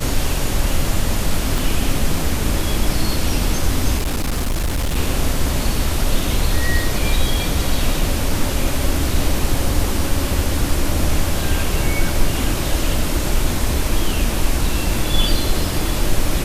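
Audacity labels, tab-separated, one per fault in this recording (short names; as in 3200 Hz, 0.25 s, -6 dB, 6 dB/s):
1.580000	1.580000	pop
3.970000	4.960000	clipped -16 dBFS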